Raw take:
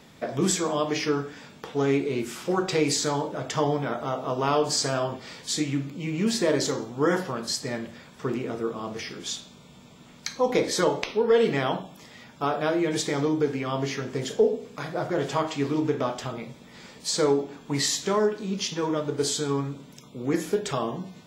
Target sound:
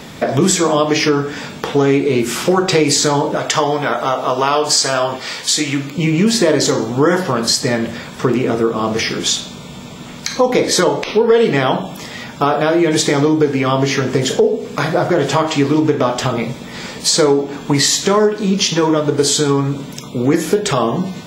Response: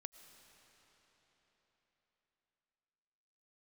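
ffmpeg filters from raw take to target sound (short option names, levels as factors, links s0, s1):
-filter_complex "[0:a]asettb=1/sr,asplit=3[s0][s1][s2];[s0]atrim=end=3.374[s3];[s1]atrim=start=3.37:end=5.98,asetpts=PTS-STARTPTS,afade=t=in:d=0.004:c=qsin,afade=t=out:st=2.606:d=0.004:c=qsin,lowshelf=f=430:g=-12[s4];[s2]atrim=start=5.976[s5];[s3][s4]acrossfade=d=0.004:c1=hsin:c2=qsin[s6];[s6][s5]acrossfade=d=0.004:c1=qsin:c2=hsin,acompressor=threshold=0.0282:ratio=2.5,alimiter=level_in=8.91:limit=0.891:release=50:level=0:latency=1,volume=0.891"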